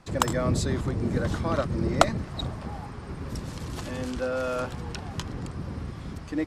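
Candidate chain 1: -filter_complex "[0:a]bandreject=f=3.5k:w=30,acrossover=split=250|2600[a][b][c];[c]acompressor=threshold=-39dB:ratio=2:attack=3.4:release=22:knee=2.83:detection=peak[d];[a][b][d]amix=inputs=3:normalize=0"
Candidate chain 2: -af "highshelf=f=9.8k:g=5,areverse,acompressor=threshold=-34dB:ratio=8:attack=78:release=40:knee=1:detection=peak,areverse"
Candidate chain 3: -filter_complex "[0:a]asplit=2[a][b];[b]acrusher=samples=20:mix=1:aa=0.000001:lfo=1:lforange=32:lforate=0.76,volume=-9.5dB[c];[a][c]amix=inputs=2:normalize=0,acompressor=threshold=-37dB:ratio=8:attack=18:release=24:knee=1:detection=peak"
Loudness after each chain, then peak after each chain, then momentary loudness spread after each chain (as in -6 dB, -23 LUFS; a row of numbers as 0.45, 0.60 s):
-30.0, -33.0, -36.5 LUFS; -1.5, -8.5, -15.5 dBFS; 12, 7, 3 LU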